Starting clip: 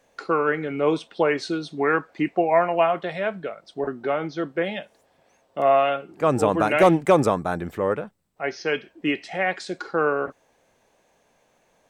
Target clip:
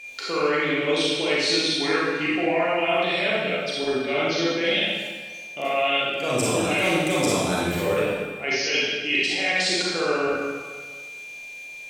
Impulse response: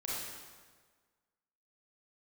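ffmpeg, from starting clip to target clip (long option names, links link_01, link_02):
-filter_complex "[0:a]alimiter=limit=-12.5dB:level=0:latency=1,highshelf=frequency=2000:width_type=q:width=1.5:gain=13,areverse,acompressor=threshold=-26dB:ratio=4,areverse,aeval=exprs='val(0)+0.0112*sin(2*PI*2400*n/s)':channel_layout=same[link_01];[1:a]atrim=start_sample=2205[link_02];[link_01][link_02]afir=irnorm=-1:irlink=0,volume=4dB"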